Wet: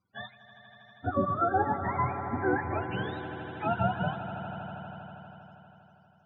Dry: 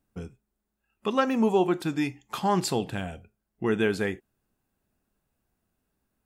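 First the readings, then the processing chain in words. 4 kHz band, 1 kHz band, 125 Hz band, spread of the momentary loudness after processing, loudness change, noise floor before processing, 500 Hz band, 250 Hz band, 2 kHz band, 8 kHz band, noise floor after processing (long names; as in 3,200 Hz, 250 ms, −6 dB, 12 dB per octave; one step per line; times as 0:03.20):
−9.5 dB, +2.0 dB, +1.0 dB, 18 LU, −4.0 dB, −81 dBFS, −5.5 dB, −7.0 dB, −1.0 dB, below −40 dB, −61 dBFS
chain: frequency axis turned over on the octave scale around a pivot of 550 Hz
Butterworth low-pass 6,200 Hz
in parallel at −1 dB: downward compressor, threshold −39 dBFS, peak gain reduction 18 dB
on the sum: spectral peaks only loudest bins 32
echo that builds up and dies away 80 ms, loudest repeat 5, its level −15 dB
level −3.5 dB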